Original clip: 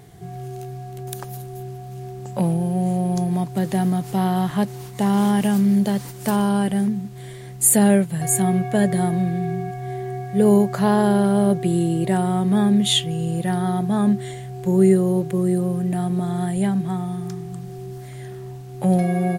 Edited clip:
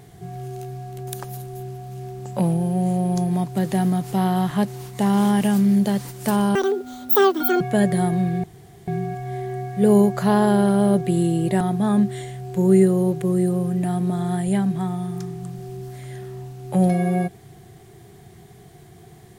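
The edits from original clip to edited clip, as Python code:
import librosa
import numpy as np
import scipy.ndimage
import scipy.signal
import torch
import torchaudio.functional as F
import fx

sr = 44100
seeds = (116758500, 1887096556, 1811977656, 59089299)

y = fx.edit(x, sr, fx.speed_span(start_s=6.55, length_s=2.06, speed=1.95),
    fx.insert_room_tone(at_s=9.44, length_s=0.44),
    fx.cut(start_s=12.17, length_s=1.53), tone=tone)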